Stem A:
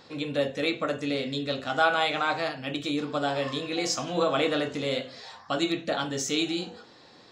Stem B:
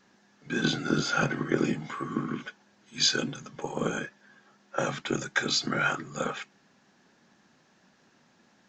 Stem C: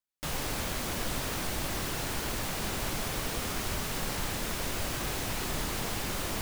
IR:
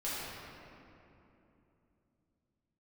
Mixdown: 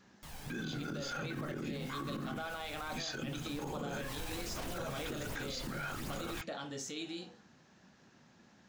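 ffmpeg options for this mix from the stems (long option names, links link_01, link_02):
-filter_complex "[0:a]dynaudnorm=framelen=290:gausssize=11:maxgain=3.5dB,agate=range=-33dB:threshold=-38dB:ratio=3:detection=peak,acompressor=threshold=-24dB:ratio=2,adelay=600,volume=-13dB[link_01];[1:a]equalizer=frequency=71:width_type=o:width=2.3:gain=10,volume=-1.5dB[link_02];[2:a]aphaser=in_gain=1:out_gain=1:delay=1.3:decay=0.45:speed=1.3:type=sinusoidal,volume=-6dB,afade=type=in:start_time=3.83:duration=0.46:silence=0.281838[link_03];[link_02][link_03]amix=inputs=2:normalize=0,acompressor=threshold=-34dB:ratio=3,volume=0dB[link_04];[link_01][link_04]amix=inputs=2:normalize=0,alimiter=level_in=7dB:limit=-24dB:level=0:latency=1:release=39,volume=-7dB"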